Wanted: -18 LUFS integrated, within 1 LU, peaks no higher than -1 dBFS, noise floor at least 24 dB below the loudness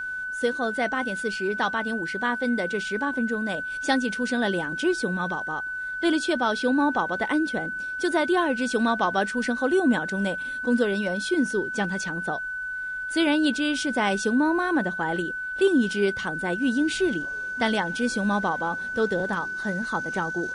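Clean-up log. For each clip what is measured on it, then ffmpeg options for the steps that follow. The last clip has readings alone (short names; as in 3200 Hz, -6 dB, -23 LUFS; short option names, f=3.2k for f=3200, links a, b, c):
steady tone 1500 Hz; tone level -29 dBFS; loudness -25.5 LUFS; peak -10.0 dBFS; loudness target -18.0 LUFS
-> -af "bandreject=f=1.5k:w=30"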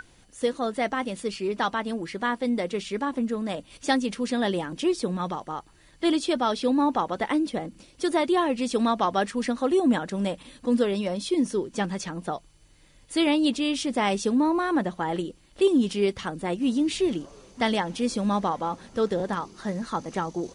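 steady tone none; loudness -26.5 LUFS; peak -10.0 dBFS; loudness target -18.0 LUFS
-> -af "volume=8.5dB"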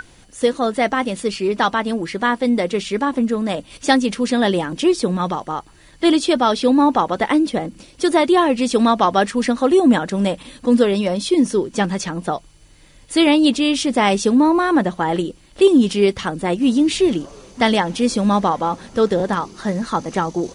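loudness -18.0 LUFS; peak -1.5 dBFS; noise floor -48 dBFS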